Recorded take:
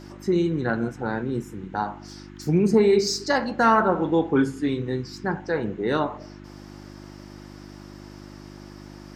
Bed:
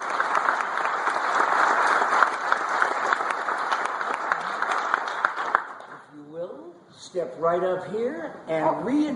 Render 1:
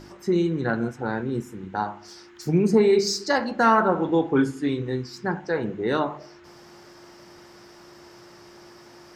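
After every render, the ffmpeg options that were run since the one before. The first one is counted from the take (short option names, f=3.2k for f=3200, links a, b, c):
-af "bandreject=f=50:t=h:w=4,bandreject=f=100:t=h:w=4,bandreject=f=150:t=h:w=4,bandreject=f=200:t=h:w=4,bandreject=f=250:t=h:w=4,bandreject=f=300:t=h:w=4"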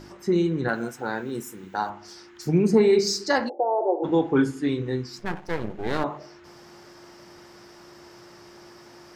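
-filter_complex "[0:a]asettb=1/sr,asplit=3[a][b][c];[a]atrim=end=0.684[d];[b]atrim=start=0.68:end=1.9,asetpts=PTS-STARTPTS,afade=t=in:d=0.004:c=qsin,afade=t=out:st=1.216:d=0.004:c=qsin,aemphasis=mode=production:type=bsi[e];[c]atrim=start=1.896[f];[d][e]acrossfade=d=0.004:c1=hsin:c2=qsin[g];[g][f]acrossfade=d=0.004:c1=qsin:c2=hsin,asplit=3[h][i][j];[h]afade=t=out:st=3.48:d=0.02[k];[i]asuperpass=centerf=530:order=12:qfactor=1,afade=t=in:st=3.48:d=0.02,afade=t=out:st=4.03:d=0.02[l];[j]afade=t=in:st=4.03:d=0.02[m];[k][l][m]amix=inputs=3:normalize=0,asettb=1/sr,asplit=3[n][o][p];[n]atrim=end=5.194[q];[o]atrim=start=5.19:end=6.04,asetpts=PTS-STARTPTS,afade=t=in:d=0.004:c=qsin,afade=t=out:st=0.846:d=0.004:c=qsin,aeval=exprs='max(val(0),0)':c=same[r];[p]atrim=start=6.036[s];[q][r]acrossfade=d=0.004:c1=hsin:c2=qsin[t];[t][s]acrossfade=d=0.004:c1=qsin:c2=hsin"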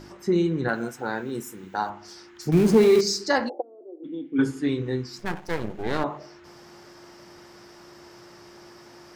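-filter_complex "[0:a]asettb=1/sr,asplit=3[a][b][c];[a]atrim=end=2.524[d];[b]atrim=start=2.52:end=3.01,asetpts=PTS-STARTPTS,afade=t=in:d=0.004:c=qsin,afade=t=out:st=0.486:d=0.004:c=qsin,aeval=exprs='val(0)+0.5*0.0531*sgn(val(0))':c=same[e];[c]atrim=start=3.006[f];[d][e]acrossfade=d=0.004:c1=hsin:c2=qsin[g];[g][f]acrossfade=d=0.004:c1=qsin:c2=hsin,asplit=3[h][i][j];[h]afade=t=out:st=3.6:d=0.02[k];[i]asplit=3[l][m][n];[l]bandpass=f=270:t=q:w=8,volume=0dB[o];[m]bandpass=f=2.29k:t=q:w=8,volume=-6dB[p];[n]bandpass=f=3.01k:t=q:w=8,volume=-9dB[q];[o][p][q]amix=inputs=3:normalize=0,afade=t=in:st=3.6:d=0.02,afade=t=out:st=4.38:d=0.02[r];[j]afade=t=in:st=4.38:d=0.02[s];[k][r][s]amix=inputs=3:normalize=0,asettb=1/sr,asplit=3[t][u][v];[t]atrim=end=5.194[w];[u]atrim=start=5.19:end=5.83,asetpts=PTS-STARTPTS,afade=t=in:d=0.004:c=qsin,afade=t=out:st=0.636:d=0.004:c=qsin,highshelf=f=5.6k:g=8.5[x];[v]atrim=start=5.826[y];[w][x]acrossfade=d=0.004:c1=hsin:c2=qsin[z];[z][y]acrossfade=d=0.004:c1=qsin:c2=hsin"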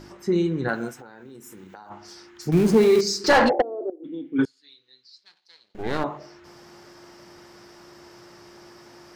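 -filter_complex "[0:a]asplit=3[a][b][c];[a]afade=t=out:st=0.93:d=0.02[d];[b]acompressor=threshold=-39dB:ratio=20:attack=3.2:release=140:knee=1:detection=peak,afade=t=in:st=0.93:d=0.02,afade=t=out:st=1.9:d=0.02[e];[c]afade=t=in:st=1.9:d=0.02[f];[d][e][f]amix=inputs=3:normalize=0,asettb=1/sr,asplit=3[g][h][i];[g]atrim=end=3.244[j];[h]atrim=start=3.24:end=3.9,asetpts=PTS-STARTPTS,afade=t=in:d=0.004:c=qsin,afade=t=out:st=0.656:d=0.004:c=qsin,asplit=2[k][l];[l]highpass=f=720:p=1,volume=28dB,asoftclip=type=tanh:threshold=-7dB[m];[k][m]amix=inputs=2:normalize=0,lowpass=f=1.7k:p=1,volume=-6dB[n];[i]atrim=start=3.896[o];[j][n]acrossfade=d=0.004:c1=hsin:c2=qsin[p];[p][o]acrossfade=d=0.004:c1=qsin:c2=hsin,asettb=1/sr,asplit=3[q][r][s];[q]atrim=end=4.454[t];[r]atrim=start=4.45:end=5.75,asetpts=PTS-STARTPTS,afade=t=in:d=0.004:c=qsin,afade=t=out:st=1.296:d=0.004:c=qsin,bandpass=f=4.2k:t=q:w=9.4[u];[s]atrim=start=5.746[v];[t][u]acrossfade=d=0.004:c1=hsin:c2=qsin[w];[w][v]acrossfade=d=0.004:c1=qsin:c2=hsin"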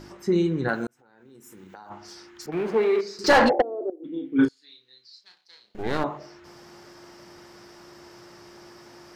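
-filter_complex "[0:a]asettb=1/sr,asplit=3[a][b][c];[a]atrim=end=2.464[d];[b]atrim=start=2.46:end=3.19,asetpts=PTS-STARTPTS,afade=t=in:d=0.004:c=qsin,afade=t=out:st=0.726:d=0.004:c=qsin,acrossover=split=390 3000:gain=0.112 1 0.0708[e][f][g];[e][f][g]amix=inputs=3:normalize=0[h];[c]atrim=start=3.186[i];[d][h]acrossfade=d=0.004:c1=hsin:c2=qsin[j];[j][i]acrossfade=d=0.004:c1=qsin:c2=hsin,asettb=1/sr,asplit=3[k][l][m];[k]atrim=end=4.134[n];[l]atrim=start=4.13:end=5.8,asetpts=PTS-STARTPTS,afade=t=in:d=0.004:c=qsin,afade=t=out:st=1.666:d=0.004:c=qsin,asplit=2[o][p];[p]adelay=33,volume=-4.5dB[q];[o][q]amix=inputs=2:normalize=0,atrim=end_sample=73647[r];[m]atrim=start=5.796[s];[n][r]acrossfade=d=0.004:c1=hsin:c2=qsin[t];[t][s]acrossfade=d=0.004:c1=qsin:c2=hsin,asplit=2[u][v];[u]atrim=end=0.87,asetpts=PTS-STARTPTS,afade=t=out:st=0.866:d=0.004:c=hsin[w];[v]atrim=start=0.87,asetpts=PTS-STARTPTS,afade=t=in:d=0.99[x];[w][x]concat=n=2:v=0:a=1"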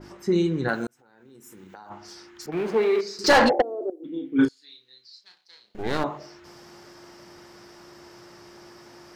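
-af "adynamicequalizer=threshold=0.00708:dfrequency=2900:dqfactor=0.7:tfrequency=2900:tqfactor=0.7:attack=5:release=100:ratio=0.375:range=2:mode=boostabove:tftype=highshelf"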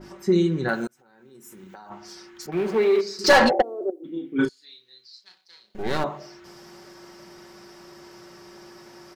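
-af "highshelf=f=11k:g=3.5,aecho=1:1:5.3:0.43"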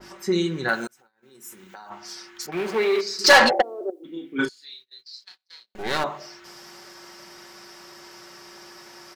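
-af "agate=range=-24dB:threshold=-52dB:ratio=16:detection=peak,tiltshelf=f=640:g=-6"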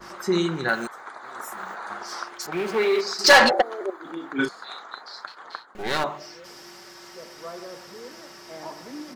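-filter_complex "[1:a]volume=-15.5dB[a];[0:a][a]amix=inputs=2:normalize=0"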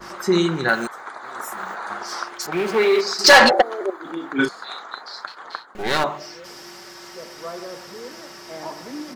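-af "volume=4.5dB,alimiter=limit=-2dB:level=0:latency=1"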